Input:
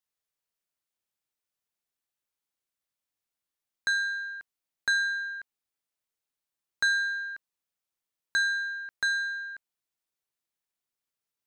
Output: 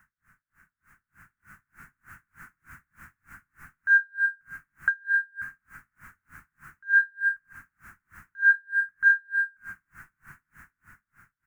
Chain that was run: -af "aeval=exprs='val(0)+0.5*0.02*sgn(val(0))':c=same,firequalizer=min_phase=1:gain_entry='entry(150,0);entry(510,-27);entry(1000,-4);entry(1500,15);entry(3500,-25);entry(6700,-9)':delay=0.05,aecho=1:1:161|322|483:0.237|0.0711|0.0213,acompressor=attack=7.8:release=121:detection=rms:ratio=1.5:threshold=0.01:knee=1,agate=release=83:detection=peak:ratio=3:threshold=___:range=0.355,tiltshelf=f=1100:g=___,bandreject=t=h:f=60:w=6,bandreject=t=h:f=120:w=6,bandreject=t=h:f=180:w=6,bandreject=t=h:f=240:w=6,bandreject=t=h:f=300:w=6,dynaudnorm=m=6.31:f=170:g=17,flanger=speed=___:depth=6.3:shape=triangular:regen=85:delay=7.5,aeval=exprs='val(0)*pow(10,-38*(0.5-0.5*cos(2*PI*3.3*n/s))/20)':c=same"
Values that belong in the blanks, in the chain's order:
0.02, 9, 0.53